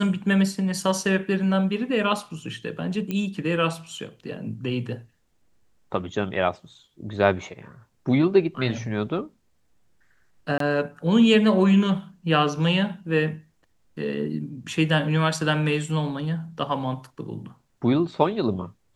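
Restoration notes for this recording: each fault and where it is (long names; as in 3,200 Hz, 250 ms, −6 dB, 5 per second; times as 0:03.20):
0:03.11: click −16 dBFS
0:10.58–0:10.60: drop-out 23 ms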